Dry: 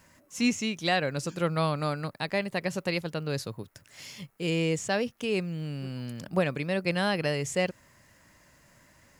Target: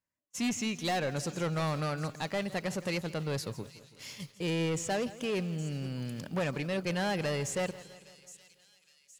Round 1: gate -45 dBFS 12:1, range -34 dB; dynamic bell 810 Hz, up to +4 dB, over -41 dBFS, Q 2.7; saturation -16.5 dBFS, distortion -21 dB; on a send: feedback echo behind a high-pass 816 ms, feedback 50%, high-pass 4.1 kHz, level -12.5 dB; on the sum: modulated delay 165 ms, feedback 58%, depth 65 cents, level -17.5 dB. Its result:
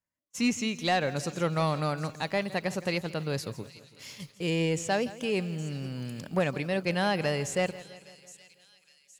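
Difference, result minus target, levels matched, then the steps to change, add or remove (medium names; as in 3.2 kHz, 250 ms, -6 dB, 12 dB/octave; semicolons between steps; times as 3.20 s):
saturation: distortion -12 dB
change: saturation -27 dBFS, distortion -9 dB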